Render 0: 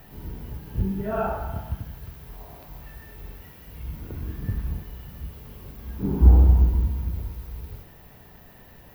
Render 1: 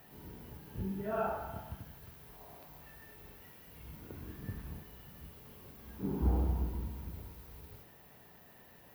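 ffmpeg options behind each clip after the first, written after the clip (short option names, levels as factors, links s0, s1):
-af "highpass=f=200:p=1,equalizer=f=8800:t=o:w=0.48:g=4,volume=0.447"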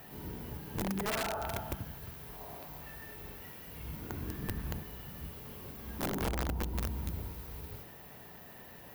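-af "acompressor=threshold=0.0141:ratio=16,aeval=exprs='(mod(56.2*val(0)+1,2)-1)/56.2':c=same,volume=2.24"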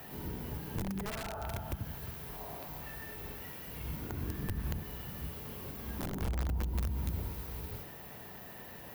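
-filter_complex "[0:a]acrossover=split=160[s0][s1];[s1]acompressor=threshold=0.00794:ratio=5[s2];[s0][s2]amix=inputs=2:normalize=0,volume=1.41"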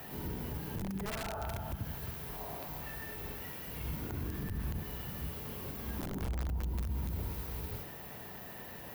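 -af "alimiter=level_in=2:limit=0.0631:level=0:latency=1:release=33,volume=0.501,volume=1.19"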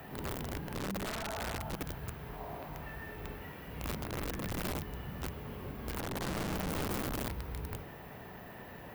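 -filter_complex "[0:a]acrossover=split=2900[s0][s1];[s1]acompressor=threshold=0.00126:ratio=4:attack=1:release=60[s2];[s0][s2]amix=inputs=2:normalize=0,aeval=exprs='(mod(42.2*val(0)+1,2)-1)/42.2':c=same,volume=1.12"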